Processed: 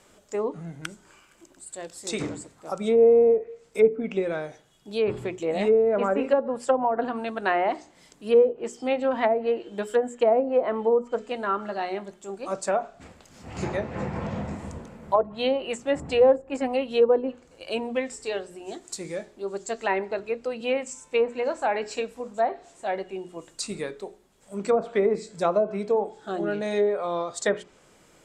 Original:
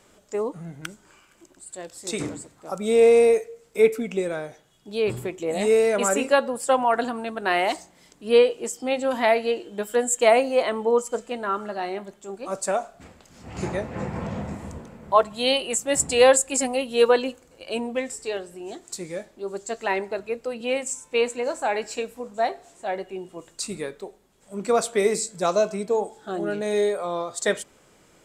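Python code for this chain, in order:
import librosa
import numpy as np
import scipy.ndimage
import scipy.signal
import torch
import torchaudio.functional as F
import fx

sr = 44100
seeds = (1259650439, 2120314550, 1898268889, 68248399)

y = fx.hum_notches(x, sr, base_hz=60, count=7)
y = fx.env_lowpass_down(y, sr, base_hz=600.0, full_db=-15.5)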